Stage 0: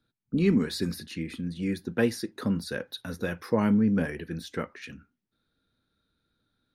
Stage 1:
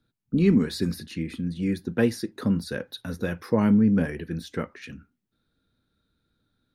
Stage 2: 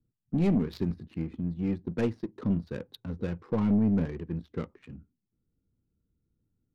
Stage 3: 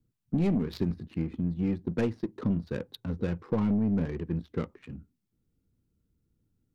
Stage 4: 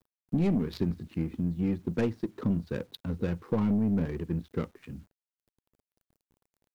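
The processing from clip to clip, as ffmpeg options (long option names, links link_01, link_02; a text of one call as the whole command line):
ffmpeg -i in.wav -af "lowshelf=frequency=360:gain=5" out.wav
ffmpeg -i in.wav -af "equalizer=frequency=250:width_type=o:width=0.67:gain=-4,equalizer=frequency=630:width_type=o:width=0.67:gain=-8,equalizer=frequency=1600:width_type=o:width=0.67:gain=-9,adynamicsmooth=sensitivity=5.5:basefreq=620,aeval=exprs='(tanh(7.94*val(0)+0.25)-tanh(0.25))/7.94':channel_layout=same" out.wav
ffmpeg -i in.wav -af "acompressor=threshold=-26dB:ratio=6,volume=3dB" out.wav
ffmpeg -i in.wav -af "acrusher=bits=10:mix=0:aa=0.000001" out.wav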